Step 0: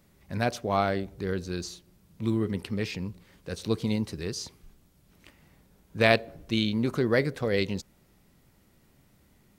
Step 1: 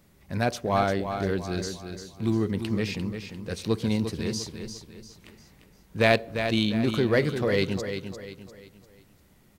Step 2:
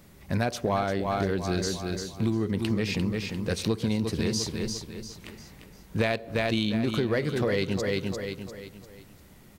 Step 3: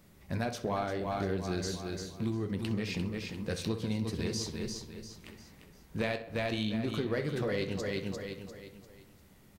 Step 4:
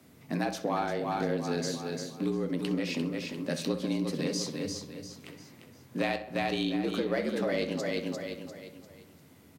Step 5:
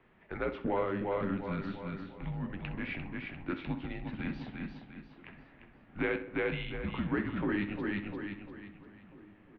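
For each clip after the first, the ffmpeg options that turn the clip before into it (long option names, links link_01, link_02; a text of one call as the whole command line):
ffmpeg -i in.wav -filter_complex "[0:a]asplit=2[link_01][link_02];[link_02]asoftclip=type=hard:threshold=-21.5dB,volume=-5.5dB[link_03];[link_01][link_03]amix=inputs=2:normalize=0,aecho=1:1:348|696|1044|1392:0.398|0.151|0.0575|0.0218,volume=-1.5dB" out.wav
ffmpeg -i in.wav -af "acompressor=threshold=-29dB:ratio=12,volume=6.5dB" out.wav
ffmpeg -i in.wav -filter_complex "[0:a]flanger=delay=9.9:depth=4.4:regen=-62:speed=0.74:shape=triangular,asplit=2[link_01][link_02];[link_02]adelay=64,lowpass=frequency=3200:poles=1,volume=-12dB,asplit=2[link_03][link_04];[link_04]adelay=64,lowpass=frequency=3200:poles=1,volume=0.53,asplit=2[link_05][link_06];[link_06]adelay=64,lowpass=frequency=3200:poles=1,volume=0.53,asplit=2[link_07][link_08];[link_08]adelay=64,lowpass=frequency=3200:poles=1,volume=0.53,asplit=2[link_09][link_10];[link_10]adelay=64,lowpass=frequency=3200:poles=1,volume=0.53,asplit=2[link_11][link_12];[link_12]adelay=64,lowpass=frequency=3200:poles=1,volume=0.53[link_13];[link_01][link_03][link_05][link_07][link_09][link_11][link_13]amix=inputs=7:normalize=0,volume=-2.5dB" out.wav
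ffmpeg -i in.wav -af "afreqshift=73,volume=2.5dB" out.wav
ffmpeg -i in.wav -filter_complex "[0:a]asplit=2[link_01][link_02];[link_02]adelay=1691,volume=-21dB,highshelf=frequency=4000:gain=-38[link_03];[link_01][link_03]amix=inputs=2:normalize=0,highpass=frequency=400:width_type=q:width=0.5412,highpass=frequency=400:width_type=q:width=1.307,lowpass=frequency=3000:width_type=q:width=0.5176,lowpass=frequency=3000:width_type=q:width=0.7071,lowpass=frequency=3000:width_type=q:width=1.932,afreqshift=-260" out.wav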